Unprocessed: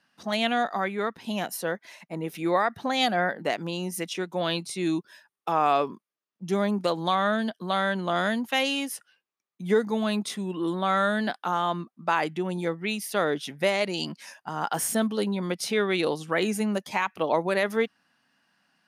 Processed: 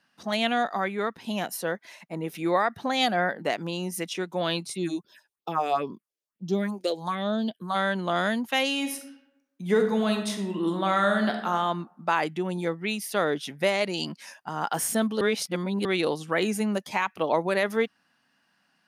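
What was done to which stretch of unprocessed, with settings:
4.72–7.74 phaser stages 4, 3.8 Hz -> 0.73 Hz, lowest notch 170–2000 Hz
8.77–11.5 reverb throw, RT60 0.85 s, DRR 4.5 dB
15.21–15.85 reverse

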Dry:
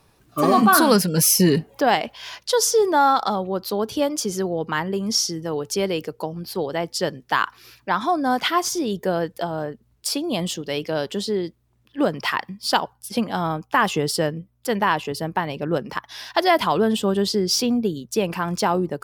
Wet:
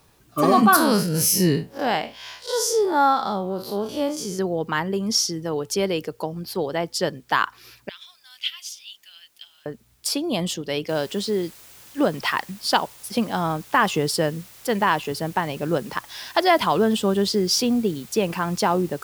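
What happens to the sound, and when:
0.76–4.39 time blur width 97 ms
7.89–9.66 ladder high-pass 2600 Hz, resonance 65%
10.89 noise floor step -65 dB -47 dB

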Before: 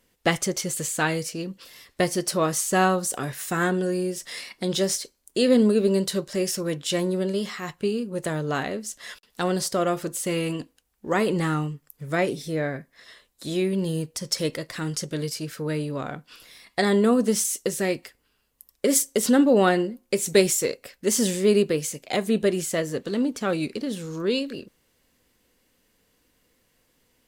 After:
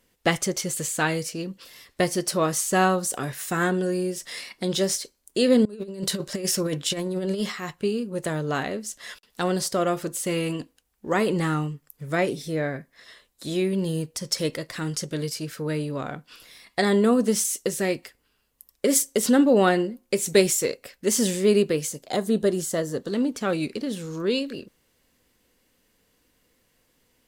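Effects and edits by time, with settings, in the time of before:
5.65–7.52 negative-ratio compressor -27 dBFS, ratio -0.5
21.88–23.12 bell 2400 Hz -12 dB 0.54 oct

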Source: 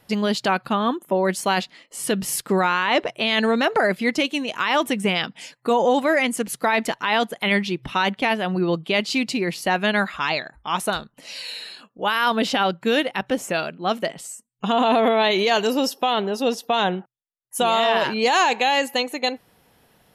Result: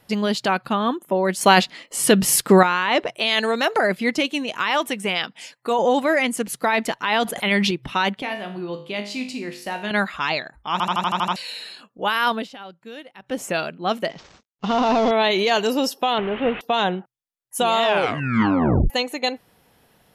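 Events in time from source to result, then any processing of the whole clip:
1.41–2.63 gain +7.5 dB
3.15–3.79 tone controls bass -11 dB, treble +6 dB
4.7–5.79 low shelf 260 Hz -10.5 dB
7.23–7.71 sustainer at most 21 dB/s
8.22–9.91 resonator 51 Hz, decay 0.52 s, mix 80%
10.72 stutter in place 0.08 s, 8 plays
12.28–13.42 dip -18 dB, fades 0.20 s
14.1–15.11 CVSD 32 kbps
16.18–16.61 delta modulation 16 kbps, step -25 dBFS
17.84 tape stop 1.06 s

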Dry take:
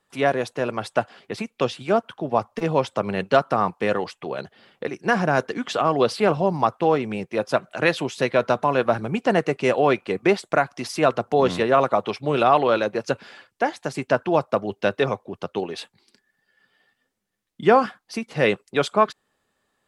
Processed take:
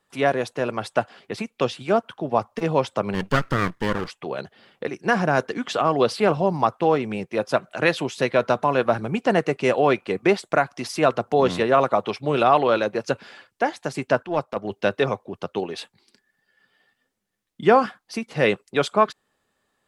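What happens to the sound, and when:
3.14–4.08 minimum comb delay 0.62 ms
14.22–14.7 transient shaper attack -11 dB, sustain -5 dB

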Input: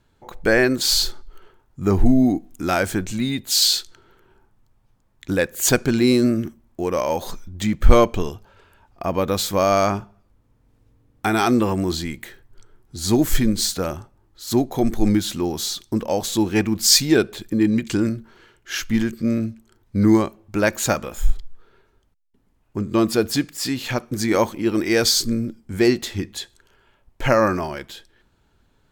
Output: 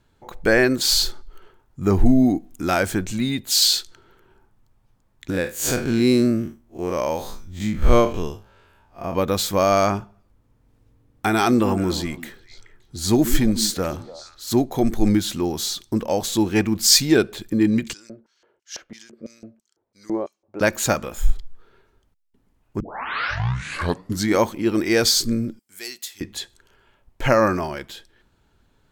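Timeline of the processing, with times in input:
5.3–9.14 time blur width 97 ms
11.34–14.53 delay with a stepping band-pass 0.143 s, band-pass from 250 Hz, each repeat 1.4 oct, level -9.5 dB
17.93–20.61 LFO band-pass square 3 Hz 570–5800 Hz
22.8 tape start 1.54 s
25.59–26.21 differentiator

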